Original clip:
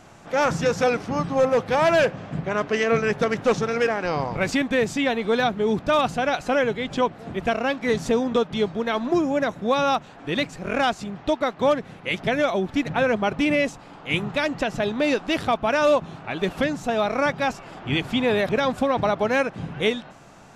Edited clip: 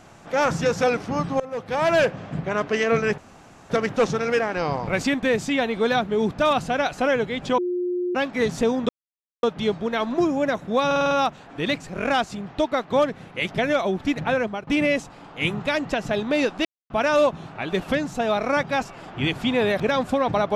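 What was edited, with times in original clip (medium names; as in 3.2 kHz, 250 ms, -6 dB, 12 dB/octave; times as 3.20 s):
1.40–1.98 s: fade in, from -21 dB
3.18 s: insert room tone 0.52 s
7.06–7.63 s: bleep 357 Hz -22 dBFS
8.37 s: insert silence 0.54 s
9.80 s: stutter 0.05 s, 6 plays
12.84–13.36 s: fade out equal-power, to -17 dB
15.34–15.59 s: mute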